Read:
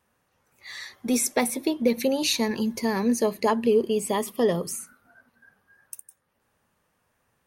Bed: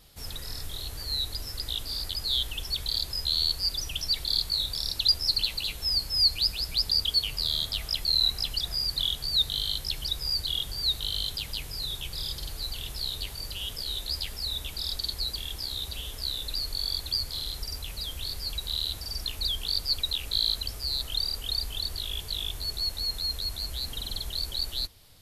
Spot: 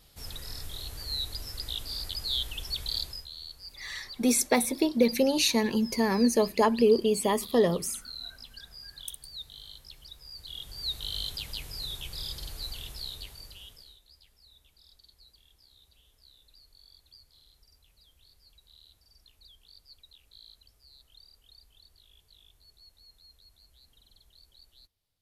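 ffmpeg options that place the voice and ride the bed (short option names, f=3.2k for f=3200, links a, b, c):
-filter_complex "[0:a]adelay=3150,volume=-0.5dB[a];[1:a]volume=11dB,afade=t=out:st=3:d=0.28:silence=0.188365,afade=t=in:st=10.34:d=0.85:silence=0.199526,afade=t=out:st=12.66:d=1.33:silence=0.0668344[b];[a][b]amix=inputs=2:normalize=0"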